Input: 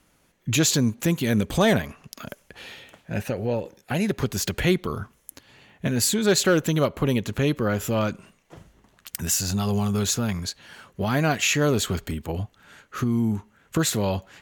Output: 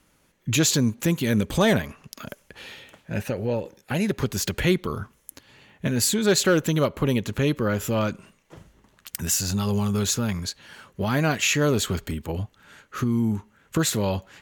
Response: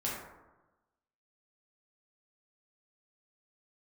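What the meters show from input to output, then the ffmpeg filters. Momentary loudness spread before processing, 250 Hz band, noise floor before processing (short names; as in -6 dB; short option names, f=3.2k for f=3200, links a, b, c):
19 LU, 0.0 dB, -64 dBFS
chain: -af "bandreject=f=710:w=12"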